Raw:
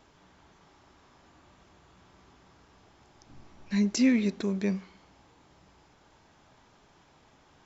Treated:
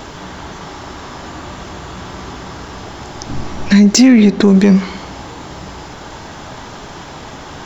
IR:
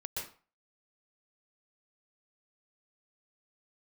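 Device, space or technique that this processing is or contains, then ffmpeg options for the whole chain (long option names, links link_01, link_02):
mastering chain: -filter_complex "[0:a]asettb=1/sr,asplit=3[link_01][link_02][link_03];[link_01]atrim=end=4.084[link_04];[link_02]atrim=start=4.08:end=4.48,asetpts=PTS-STARTPTS,afade=type=in:duration=0.004:curve=qsin,afade=type=out:start_time=0.396:duration=0.004:curve=qsin,highshelf=frequency=5300:gain=-10.5[link_05];[link_03]atrim=start=4.476[link_06];[link_04][link_05]acrossfade=duration=0.004:curve1=hsin:curve2=qsin[link_07];[link_07][link_06]acrossfade=duration=0.004:curve1=qsin:curve2=hsin,equalizer=frequency=2400:width_type=o:width=0.28:gain=-3,acompressor=threshold=-33dB:ratio=2.5,asoftclip=type=tanh:threshold=-25dB,alimiter=level_in=30.5dB:limit=-1dB:release=50:level=0:latency=1,volume=-1dB"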